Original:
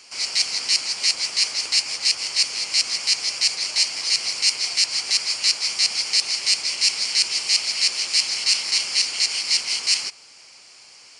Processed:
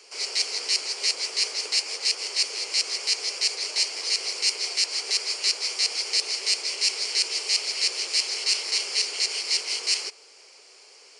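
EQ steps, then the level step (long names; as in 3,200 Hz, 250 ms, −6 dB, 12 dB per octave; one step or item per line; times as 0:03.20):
high-pass with resonance 420 Hz, resonance Q 5
−4.5 dB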